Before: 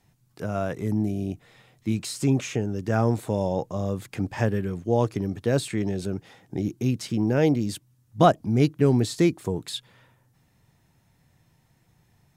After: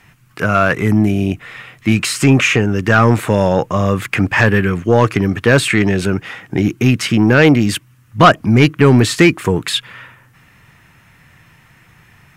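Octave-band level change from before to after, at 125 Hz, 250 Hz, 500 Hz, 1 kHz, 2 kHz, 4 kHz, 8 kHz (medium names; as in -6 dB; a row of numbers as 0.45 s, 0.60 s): +11.0 dB, +11.0 dB, +10.0 dB, +12.5 dB, +22.0 dB, +16.0 dB, +12.5 dB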